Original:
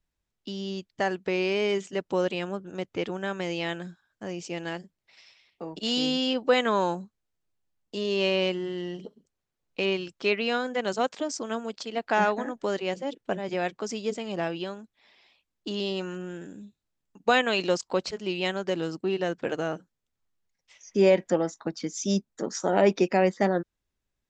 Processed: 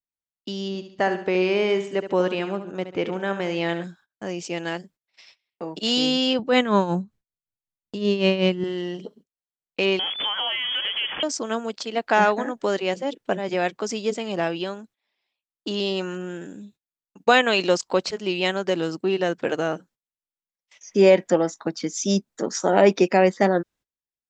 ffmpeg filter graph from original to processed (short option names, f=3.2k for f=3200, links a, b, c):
-filter_complex "[0:a]asettb=1/sr,asplit=3[a][b][c];[a]atrim=end=0.684[d];[b]atrim=start=0.68:end=3.84,asetpts=PTS-STARTPTS,afade=t=in:d=0.004:c=qsin,afade=t=out:st=3.156:d=0.004:c=qsin,highshelf=f=4.2k:g=-10,aecho=1:1:71|142|213|284:0.299|0.122|0.0502|0.0206,atrim=end_sample=139356[e];[c]atrim=start=3.836[f];[d][e]acrossfade=d=0.004:c1=hsin:c2=qsin[g];[g][f]acrossfade=d=0.004:c1=qsin:c2=hsin,asettb=1/sr,asplit=3[h][i][j];[h]atrim=end=6.394[k];[i]atrim=start=6.39:end=8.64,asetpts=PTS-STARTPTS,afade=t=in:d=0.004:c=qsin,afade=t=out:st=2.246:d=0.004:c=qsin,tremolo=f=5.3:d=0.71,bass=f=250:g=14,treble=f=4k:g=-3[l];[j]atrim=start=8.636[m];[k][l]acrossfade=d=0.004:c1=hsin:c2=qsin[n];[n][m]acrossfade=d=0.004:c1=qsin:c2=hsin,asettb=1/sr,asplit=3[o][p][q];[o]atrim=end=9.994[r];[p]atrim=start=9.99:end=11.23,asetpts=PTS-STARTPTS,afade=t=in:d=0.004:c=qsin,afade=t=out:st=1.236:d=0.004:c=qsin,aeval=exprs='val(0)+0.5*0.0422*sgn(val(0))':c=same,lowpass=f=3k:t=q:w=0.5098,lowpass=f=3k:t=q:w=0.6013,lowpass=f=3k:t=q:w=0.9,lowpass=f=3k:t=q:w=2.563,afreqshift=-3500,acompressor=threshold=-28dB:ratio=6:attack=3.2:release=140:knee=1:detection=peak[s];[q]atrim=start=11.226[t];[r][s]acrossfade=d=0.004:c1=hsin:c2=qsin[u];[u][t]acrossfade=d=0.004:c1=qsin:c2=hsin,agate=range=-23dB:threshold=-55dB:ratio=16:detection=peak,lowshelf=f=81:g=-12,volume=5.5dB"